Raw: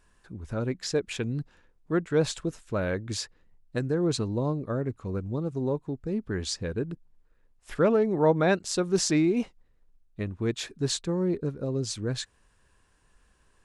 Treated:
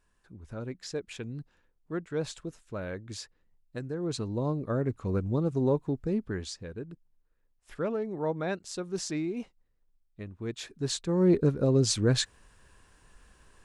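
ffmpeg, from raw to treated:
ffmpeg -i in.wav -af "volume=17.5dB,afade=type=in:start_time=3.98:duration=1.15:silence=0.298538,afade=type=out:start_time=6:duration=0.53:silence=0.266073,afade=type=in:start_time=10.36:duration=0.71:silence=0.446684,afade=type=in:start_time=11.07:duration=0.26:silence=0.398107" out.wav

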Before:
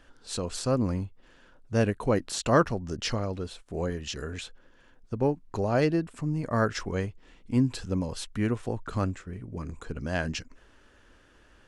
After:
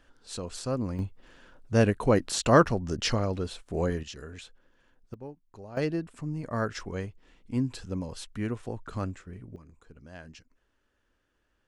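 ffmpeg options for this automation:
ffmpeg -i in.wav -af "asetnsamples=nb_out_samples=441:pad=0,asendcmd='0.99 volume volume 2.5dB;4.03 volume volume -7dB;5.14 volume volume -17dB;5.77 volume volume -4.5dB;9.56 volume volume -16.5dB',volume=-4.5dB" out.wav

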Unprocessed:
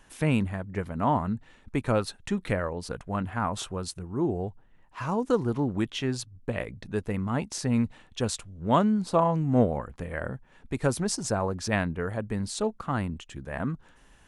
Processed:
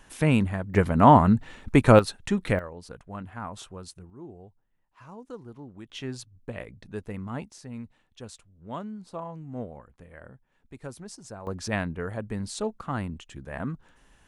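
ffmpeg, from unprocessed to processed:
ffmpeg -i in.wav -af "asetnsamples=nb_out_samples=441:pad=0,asendcmd='0.74 volume volume 10dB;1.99 volume volume 3dB;2.59 volume volume -8dB;4.1 volume volume -16.5dB;5.9 volume volume -6dB;7.5 volume volume -14dB;11.47 volume volume -2dB',volume=3dB" out.wav

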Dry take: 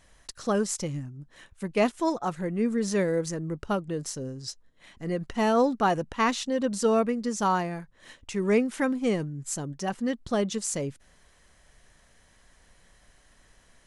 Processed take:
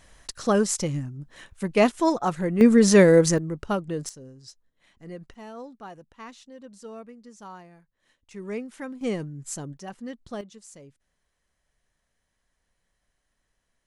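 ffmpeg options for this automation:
ffmpeg -i in.wav -af "asetnsamples=nb_out_samples=441:pad=0,asendcmd='2.61 volume volume 11dB;3.38 volume volume 1.5dB;4.09 volume volume -9.5dB;5.34 volume volume -18dB;8.31 volume volume -10dB;9.01 volume volume -2dB;9.77 volume volume -8.5dB;10.41 volume volume -17dB',volume=4.5dB" out.wav

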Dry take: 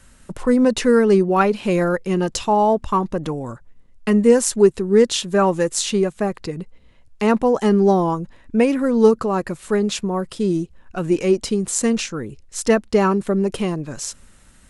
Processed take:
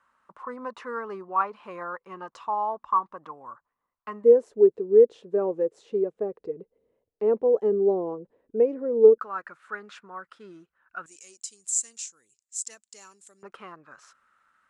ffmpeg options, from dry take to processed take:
ffmpeg -i in.wav -af "asetnsamples=nb_out_samples=441:pad=0,asendcmd='4.24 bandpass f 450;9.18 bandpass f 1400;11.06 bandpass f 7400;13.43 bandpass f 1300',bandpass=frequency=1100:width_type=q:width=5.2:csg=0" out.wav

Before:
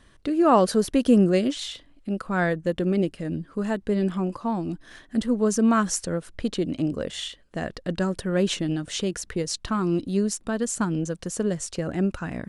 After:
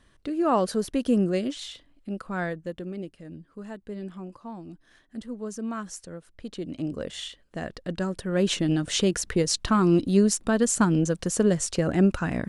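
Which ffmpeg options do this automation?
ffmpeg -i in.wav -af "volume=11.5dB,afade=type=out:start_time=2.27:duration=0.65:silence=0.421697,afade=type=in:start_time=6.4:duration=0.62:silence=0.354813,afade=type=in:start_time=8.24:duration=0.64:silence=0.421697" out.wav

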